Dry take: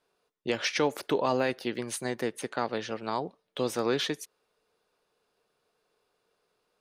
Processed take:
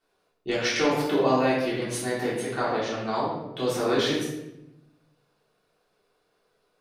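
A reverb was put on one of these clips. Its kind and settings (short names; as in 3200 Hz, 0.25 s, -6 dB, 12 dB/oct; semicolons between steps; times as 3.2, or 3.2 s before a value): shoebox room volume 340 m³, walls mixed, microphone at 3.4 m; gain -4.5 dB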